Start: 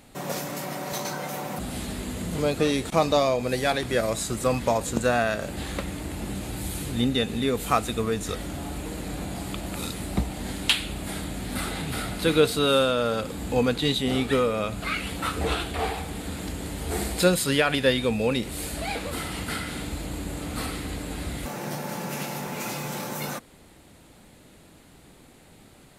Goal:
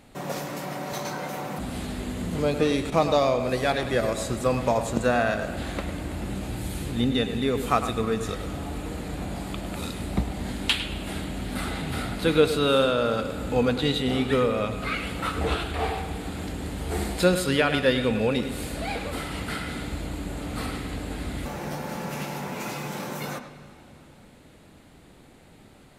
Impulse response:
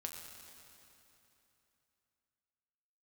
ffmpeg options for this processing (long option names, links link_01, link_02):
-filter_complex "[0:a]highshelf=frequency=5000:gain=-7,asplit=2[link_01][link_02];[1:a]atrim=start_sample=2205,lowpass=4600,adelay=103[link_03];[link_02][link_03]afir=irnorm=-1:irlink=0,volume=-6.5dB[link_04];[link_01][link_04]amix=inputs=2:normalize=0"